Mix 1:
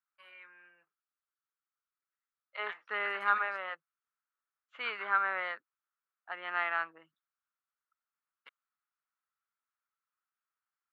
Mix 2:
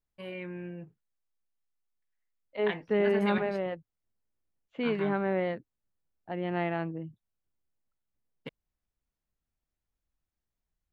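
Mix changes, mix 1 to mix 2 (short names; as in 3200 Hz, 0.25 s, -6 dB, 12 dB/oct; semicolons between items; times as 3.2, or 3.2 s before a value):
first voice +11.5 dB; master: remove resonant high-pass 1300 Hz, resonance Q 5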